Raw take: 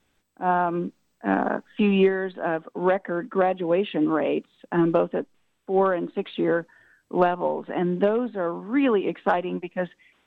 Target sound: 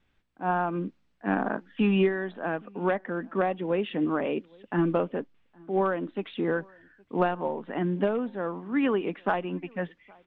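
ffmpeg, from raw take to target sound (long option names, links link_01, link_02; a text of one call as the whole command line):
ffmpeg -i in.wav -filter_complex "[0:a]lowpass=2700,equalizer=frequency=560:width=0.32:gain=-8,asplit=2[link_01][link_02];[link_02]adelay=816.3,volume=-27dB,highshelf=frequency=4000:gain=-18.4[link_03];[link_01][link_03]amix=inputs=2:normalize=0,volume=2.5dB" out.wav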